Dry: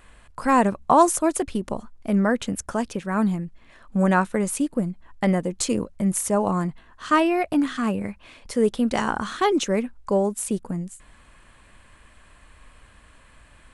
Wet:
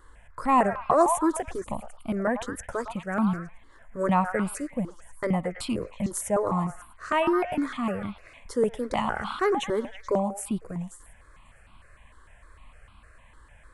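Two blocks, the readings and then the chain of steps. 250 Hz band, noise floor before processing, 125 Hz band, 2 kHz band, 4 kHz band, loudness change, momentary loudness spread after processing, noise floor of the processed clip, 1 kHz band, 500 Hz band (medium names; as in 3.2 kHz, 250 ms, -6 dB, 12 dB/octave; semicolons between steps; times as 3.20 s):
-6.0 dB, -53 dBFS, -5.0 dB, -4.0 dB, -6.0 dB, -4.5 dB, 13 LU, -55 dBFS, -3.0 dB, -3.0 dB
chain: treble shelf 4.3 kHz -6 dB; repeats whose band climbs or falls 108 ms, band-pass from 1 kHz, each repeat 0.7 oct, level -6 dB; stepped phaser 6.6 Hz 670–1800 Hz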